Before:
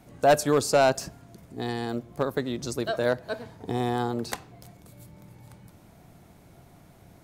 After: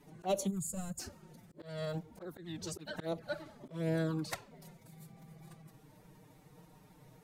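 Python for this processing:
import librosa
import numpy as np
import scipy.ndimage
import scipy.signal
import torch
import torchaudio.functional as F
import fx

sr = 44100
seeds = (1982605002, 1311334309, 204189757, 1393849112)

y = fx.pitch_keep_formants(x, sr, semitones=5.0)
y = fx.spec_box(y, sr, start_s=0.47, length_s=0.52, low_hz=250.0, high_hz=6600.0, gain_db=-24)
y = fx.env_flanger(y, sr, rest_ms=7.4, full_db=-21.5)
y = fx.auto_swell(y, sr, attack_ms=224.0)
y = F.gain(torch.from_numpy(y), -3.0).numpy()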